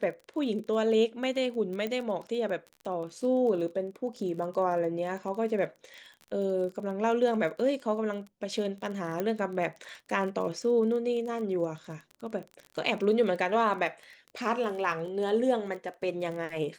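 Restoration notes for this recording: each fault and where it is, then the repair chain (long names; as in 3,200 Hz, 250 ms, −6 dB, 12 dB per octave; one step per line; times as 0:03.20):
surface crackle 26 per second −37 dBFS
0:01.87: click −21 dBFS
0:09.20: click −18 dBFS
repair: click removal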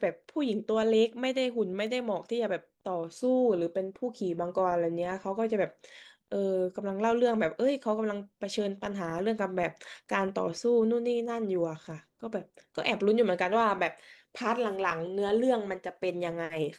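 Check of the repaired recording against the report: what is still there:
0:01.87: click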